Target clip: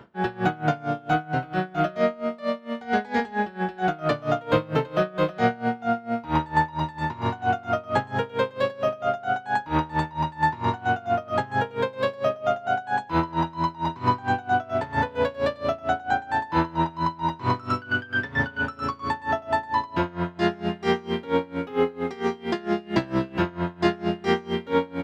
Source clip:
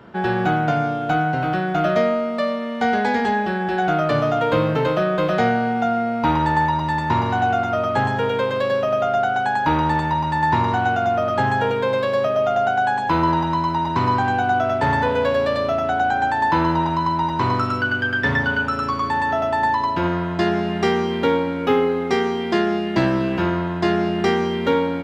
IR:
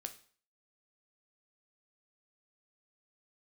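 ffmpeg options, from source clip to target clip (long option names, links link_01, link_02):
-af "aeval=exprs='val(0)*pow(10,-23*(0.5-0.5*cos(2*PI*4.4*n/s))/20)':channel_layout=same"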